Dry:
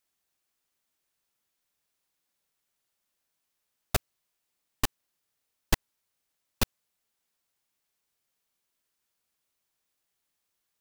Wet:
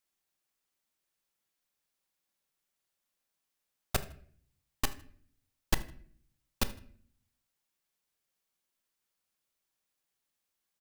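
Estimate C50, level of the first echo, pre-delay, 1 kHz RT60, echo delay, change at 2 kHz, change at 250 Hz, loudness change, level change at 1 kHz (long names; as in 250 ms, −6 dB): 15.0 dB, −21.5 dB, 4 ms, 0.45 s, 79 ms, −3.5 dB, −3.0 dB, −3.5 dB, −3.5 dB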